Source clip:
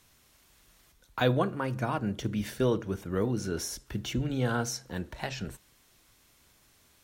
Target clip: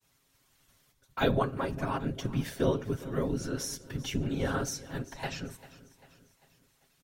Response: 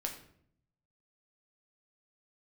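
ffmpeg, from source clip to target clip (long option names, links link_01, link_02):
-af "agate=range=-33dB:threshold=-57dB:ratio=3:detection=peak,afftfilt=real='hypot(re,im)*cos(2*PI*random(0))':imag='hypot(re,im)*sin(2*PI*random(1))':win_size=512:overlap=0.75,aecho=1:1:7.4:0.48,aecho=1:1:395|790|1185|1580:0.126|0.0629|0.0315|0.0157,volume=4dB"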